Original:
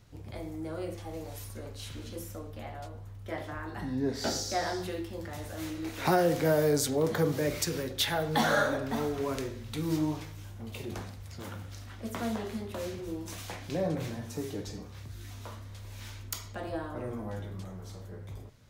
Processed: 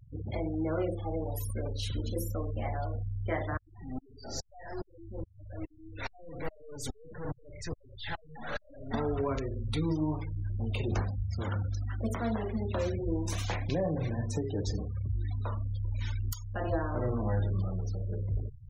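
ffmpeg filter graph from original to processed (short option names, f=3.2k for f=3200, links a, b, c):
-filter_complex "[0:a]asettb=1/sr,asplit=3[a][b][c];[a]atrim=end=3.574[d];[b]atrim=start=3.57:end=8.94,asetpts=PTS-STARTPTS,afade=t=in:d=0.004:c=qsin,afade=t=out:st=5.366:d=0.004:c=qsin,adynamicequalizer=threshold=0.00251:dfrequency=1900:dqfactor=6.6:tfrequency=1900:tqfactor=6.6:attack=5:release=100:ratio=0.375:range=2:mode=boostabove:tftype=bell,aeval=exprs='(tanh(79.4*val(0)+0.25)-tanh(0.25))/79.4':c=same,aeval=exprs='val(0)*pow(10,-26*if(lt(mod(-2.4*n/s,1),2*abs(-2.4)/1000),1-mod(-2.4*n/s,1)/(2*abs(-2.4)/1000),(mod(-2.4*n/s,1)-2*abs(-2.4)/1000)/(1-2*abs(-2.4)/1000))/20)':c=same[e];[c]atrim=start=8.936[f];[d][e]acrossfade=d=0.004:c1=hsin:c2=qsin[g];[g][f]acrossfade=d=0.004:c1=qsin:c2=hsin,alimiter=level_in=3dB:limit=-24dB:level=0:latency=1:release=456,volume=-3dB,asubboost=boost=2.5:cutoff=110,afftfilt=real='re*gte(hypot(re,im),0.00631)':imag='im*gte(hypot(re,im),0.00631)':win_size=1024:overlap=0.75,volume=6.5dB"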